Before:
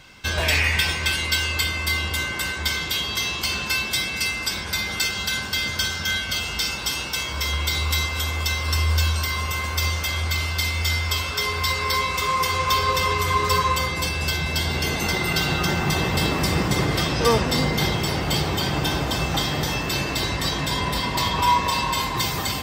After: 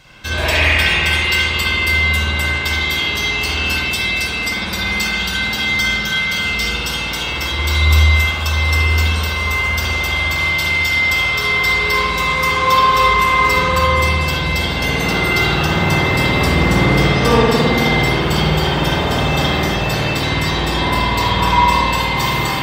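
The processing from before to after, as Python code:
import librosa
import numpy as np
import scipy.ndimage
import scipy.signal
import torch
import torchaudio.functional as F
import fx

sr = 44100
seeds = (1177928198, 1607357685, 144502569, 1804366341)

y = fx.rev_spring(x, sr, rt60_s=1.6, pass_ms=(52,), chirp_ms=30, drr_db=-7.0)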